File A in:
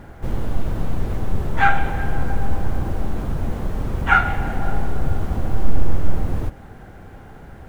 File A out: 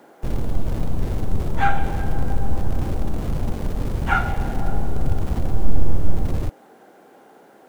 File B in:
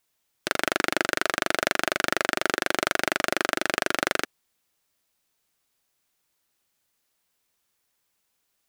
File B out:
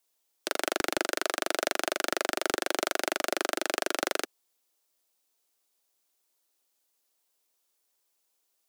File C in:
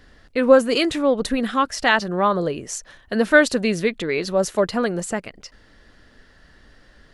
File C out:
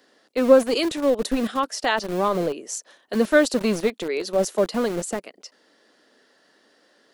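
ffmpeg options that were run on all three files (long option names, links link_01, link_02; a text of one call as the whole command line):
ffmpeg -i in.wav -filter_complex "[0:a]equalizer=frequency=1800:width_type=o:width=1.8:gain=-7.5,acrossover=split=270|730|1900[link_01][link_02][link_03][link_04];[link_01]aeval=exprs='val(0)*gte(abs(val(0)),0.0398)':channel_layout=same[link_05];[link_05][link_02][link_03][link_04]amix=inputs=4:normalize=0" out.wav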